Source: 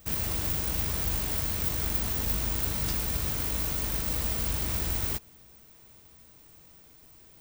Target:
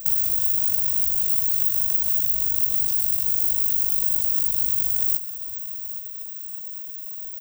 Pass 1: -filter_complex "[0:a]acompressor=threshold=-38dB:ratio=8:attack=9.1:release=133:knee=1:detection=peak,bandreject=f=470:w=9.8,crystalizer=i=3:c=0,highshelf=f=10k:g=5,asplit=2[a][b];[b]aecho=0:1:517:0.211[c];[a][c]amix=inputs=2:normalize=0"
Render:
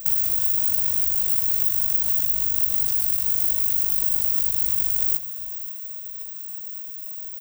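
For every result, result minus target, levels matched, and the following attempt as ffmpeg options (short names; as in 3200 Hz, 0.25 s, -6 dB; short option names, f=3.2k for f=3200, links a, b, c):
echo 0.315 s early; 2000 Hz band +6.0 dB
-filter_complex "[0:a]acompressor=threshold=-38dB:ratio=8:attack=9.1:release=133:knee=1:detection=peak,bandreject=f=470:w=9.8,crystalizer=i=3:c=0,highshelf=f=10k:g=5,asplit=2[a][b];[b]aecho=0:1:832:0.211[c];[a][c]amix=inputs=2:normalize=0"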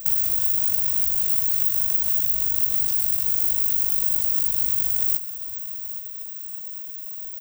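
2000 Hz band +6.0 dB
-filter_complex "[0:a]acompressor=threshold=-38dB:ratio=8:attack=9.1:release=133:knee=1:detection=peak,equalizer=f=1.6k:t=o:w=0.87:g=-11.5,bandreject=f=470:w=9.8,crystalizer=i=3:c=0,highshelf=f=10k:g=5,asplit=2[a][b];[b]aecho=0:1:832:0.211[c];[a][c]amix=inputs=2:normalize=0"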